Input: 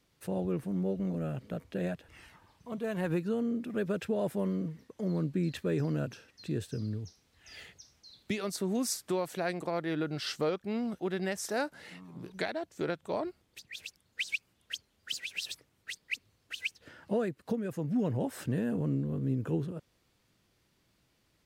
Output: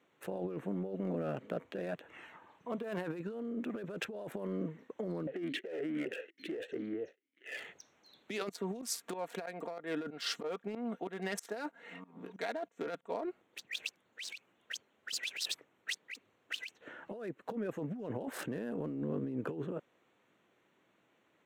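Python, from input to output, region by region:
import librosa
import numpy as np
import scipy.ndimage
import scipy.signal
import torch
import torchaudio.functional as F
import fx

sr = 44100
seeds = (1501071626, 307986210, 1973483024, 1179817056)

y = fx.chain(x, sr, fx.leveller(passes=5),
    fx.vowel_sweep(vowels='e-i', hz=2.2), at=(5.27, 7.57))
y = fx.chain(y, sr, fx.comb(ms=4.3, depth=0.55),
    fx.tremolo_shape(shape='saw_up', hz=3.1, depth_pct=90), at=(8.49, 13.22))
y = fx.wiener(y, sr, points=9)
y = scipy.signal.sosfilt(scipy.signal.butter(2, 300.0, 'highpass', fs=sr, output='sos'), y)
y = fx.over_compress(y, sr, threshold_db=-40.0, ratio=-1.0)
y = y * librosa.db_to_amplitude(2.0)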